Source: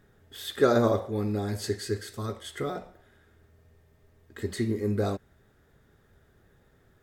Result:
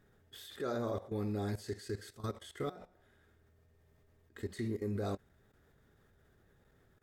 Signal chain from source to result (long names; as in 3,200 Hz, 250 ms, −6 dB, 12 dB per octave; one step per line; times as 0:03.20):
output level in coarse steps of 16 dB
level −3.5 dB